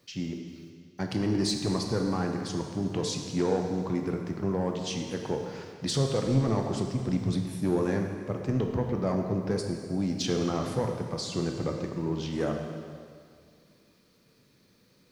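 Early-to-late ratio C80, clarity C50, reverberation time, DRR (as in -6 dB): 5.5 dB, 4.0 dB, 2.2 s, 2.5 dB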